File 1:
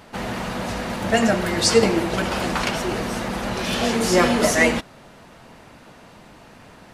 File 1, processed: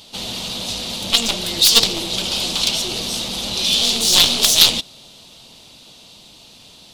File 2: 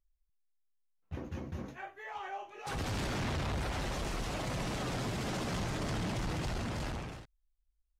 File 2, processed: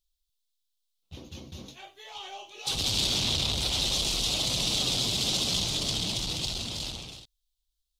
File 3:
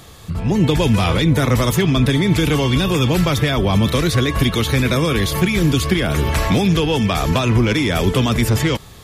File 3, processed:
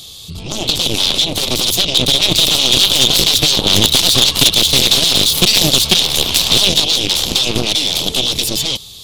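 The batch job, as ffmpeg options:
-af "dynaudnorm=f=210:g=21:m=6dB,aeval=exprs='0.794*(cos(1*acos(clip(val(0)/0.794,-1,1)))-cos(1*PI/2))+0.158*(cos(2*acos(clip(val(0)/0.794,-1,1)))-cos(2*PI/2))+0.316*(cos(3*acos(clip(val(0)/0.794,-1,1)))-cos(3*PI/2))+0.0126*(cos(7*acos(clip(val(0)/0.794,-1,1)))-cos(7*PI/2))':c=same,highshelf=f=2.5k:t=q:w=3:g=13,acontrast=77,volume=-1dB"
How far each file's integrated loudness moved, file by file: +5.5, +11.0, +6.0 LU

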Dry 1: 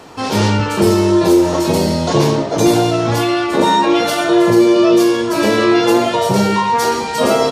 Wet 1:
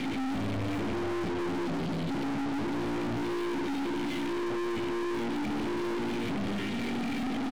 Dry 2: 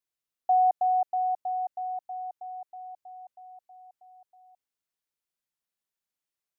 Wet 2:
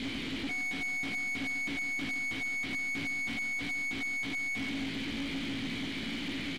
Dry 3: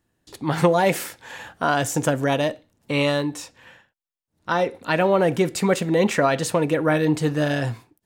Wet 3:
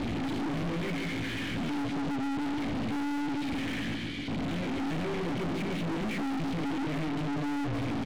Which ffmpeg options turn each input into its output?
-filter_complex "[0:a]aeval=exprs='val(0)+0.5*0.158*sgn(val(0))':c=same,acontrast=86,asplit=3[a][b][c];[a]bandpass=f=270:t=q:w=8,volume=0dB[d];[b]bandpass=f=2.29k:t=q:w=8,volume=-6dB[e];[c]bandpass=f=3.01k:t=q:w=8,volume=-9dB[f];[d][e][f]amix=inputs=3:normalize=0,lowshelf=f=200:g=9,alimiter=limit=-12dB:level=0:latency=1:release=138,lowpass=f=4.4k:t=q:w=3.7,aemphasis=mode=reproduction:type=bsi,asplit=2[g][h];[h]adelay=18,volume=-2dB[i];[g][i]amix=inputs=2:normalize=0,asplit=2[j][k];[k]adelay=143,lowpass=f=2.5k:p=1,volume=-7dB,asplit=2[l][m];[m]adelay=143,lowpass=f=2.5k:p=1,volume=0.44,asplit=2[n][o];[o]adelay=143,lowpass=f=2.5k:p=1,volume=0.44,asplit=2[p][q];[q]adelay=143,lowpass=f=2.5k:p=1,volume=0.44,asplit=2[r][s];[s]adelay=143,lowpass=f=2.5k:p=1,volume=0.44[t];[j][l][n][p][r][t]amix=inputs=6:normalize=0,aeval=exprs='(tanh(35.5*val(0)+0.35)-tanh(0.35))/35.5':c=same,acrossover=split=2700[u][v];[v]acompressor=threshold=-46dB:ratio=4:attack=1:release=60[w];[u][w]amix=inputs=2:normalize=0"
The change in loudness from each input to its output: -18.5, -5.0, -10.5 LU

